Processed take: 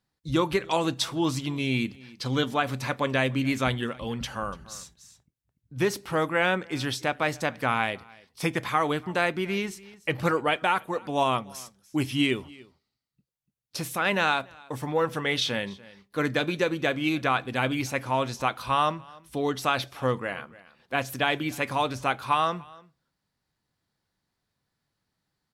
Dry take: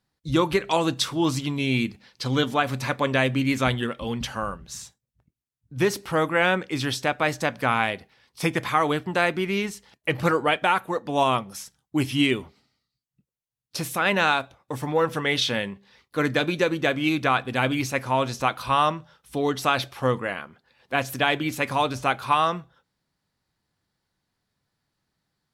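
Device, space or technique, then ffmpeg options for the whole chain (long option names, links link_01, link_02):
ducked delay: -filter_complex "[0:a]asplit=3[link_01][link_02][link_03];[link_02]adelay=291,volume=-7dB[link_04];[link_03]apad=whole_len=1139131[link_05];[link_04][link_05]sidechaincompress=threshold=-37dB:ratio=8:attack=16:release=879[link_06];[link_01][link_06]amix=inputs=2:normalize=0,volume=-3dB"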